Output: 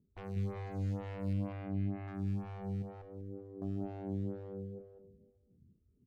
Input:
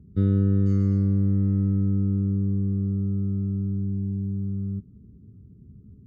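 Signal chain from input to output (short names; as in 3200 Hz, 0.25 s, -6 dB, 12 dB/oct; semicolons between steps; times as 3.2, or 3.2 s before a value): 2.82–3.62 low shelf 230 Hz -6.5 dB; added harmonics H 4 -19 dB, 7 -15 dB, 8 -35 dB, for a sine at -12 dBFS; one-sided clip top -33.5 dBFS, bottom -29 dBFS; 1.33–2.08 air absorption 410 m; feedback echo 0.194 s, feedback 34%, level -4 dB; on a send at -15 dB: reverb RT60 0.90 s, pre-delay 98 ms; on the sum: photocell phaser 2.1 Hz; gain -4 dB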